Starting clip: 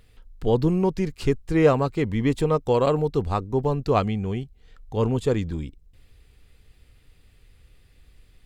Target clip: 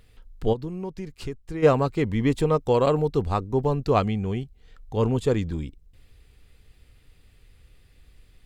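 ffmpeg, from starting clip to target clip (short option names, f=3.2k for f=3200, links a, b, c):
-filter_complex "[0:a]asplit=3[a][b][c];[a]afade=t=out:st=0.52:d=0.02[d];[b]acompressor=threshold=-35dB:ratio=2.5,afade=t=in:st=0.52:d=0.02,afade=t=out:st=1.62:d=0.02[e];[c]afade=t=in:st=1.62:d=0.02[f];[d][e][f]amix=inputs=3:normalize=0"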